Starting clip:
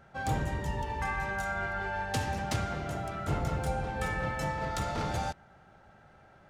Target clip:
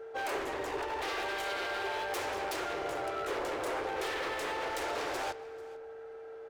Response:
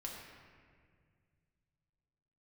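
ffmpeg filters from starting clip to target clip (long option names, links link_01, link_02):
-filter_complex "[0:a]aeval=exprs='val(0)+0.00316*sin(2*PI*450*n/s)':channel_layout=same,aeval=exprs='0.0237*(abs(mod(val(0)/0.0237+3,4)-2)-1)':channel_layout=same,lowshelf=frequency=270:width_type=q:width=3:gain=-12.5,aecho=1:1:441:0.0841,asplit=2[link_01][link_02];[1:a]atrim=start_sample=2205,lowpass=6600[link_03];[link_02][link_03]afir=irnorm=-1:irlink=0,volume=-9.5dB[link_04];[link_01][link_04]amix=inputs=2:normalize=0"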